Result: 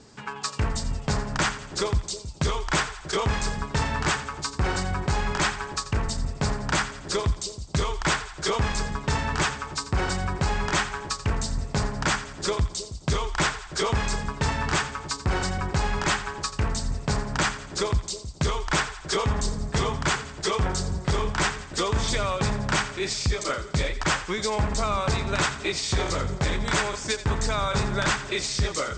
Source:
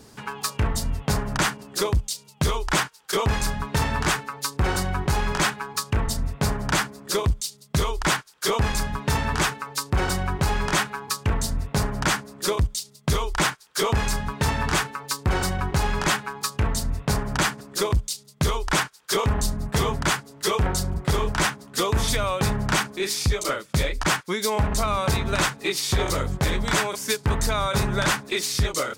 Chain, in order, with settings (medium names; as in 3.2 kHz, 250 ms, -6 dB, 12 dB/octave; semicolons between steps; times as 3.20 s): Chebyshev low-pass 8.3 kHz, order 8; on a send: two-band feedback delay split 690 Hz, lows 318 ms, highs 86 ms, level -13 dB; on the sum: trim -1.5 dB